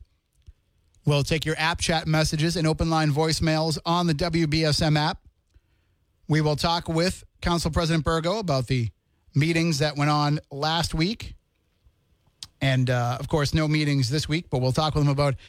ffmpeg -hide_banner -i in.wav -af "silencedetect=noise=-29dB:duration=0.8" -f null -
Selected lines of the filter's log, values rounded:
silence_start: 0.00
silence_end: 1.07 | silence_duration: 1.07
silence_start: 5.12
silence_end: 6.30 | silence_duration: 1.17
silence_start: 11.27
silence_end: 12.43 | silence_duration: 1.16